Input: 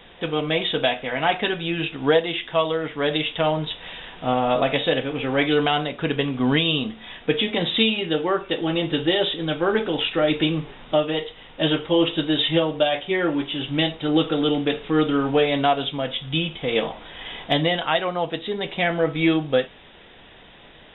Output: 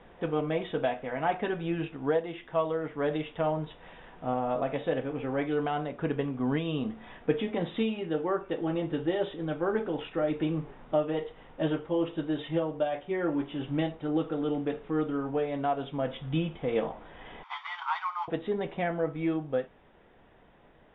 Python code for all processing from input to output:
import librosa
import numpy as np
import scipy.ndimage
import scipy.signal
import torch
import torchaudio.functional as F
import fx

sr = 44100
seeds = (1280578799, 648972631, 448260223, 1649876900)

y = fx.chain(x, sr, fx.cvsd(bps=32000),
    fx.steep_highpass(hz=870.0, slope=72),
    fx.comb(ms=0.9, depth=0.54), at=(17.43, 18.28))
y = scipy.signal.sosfilt(scipy.signal.butter(2, 1400.0, 'lowpass', fs=sr, output='sos'), y)
y = fx.rider(y, sr, range_db=5, speed_s=0.5)
y = y * 10.0 ** (-7.0 / 20.0)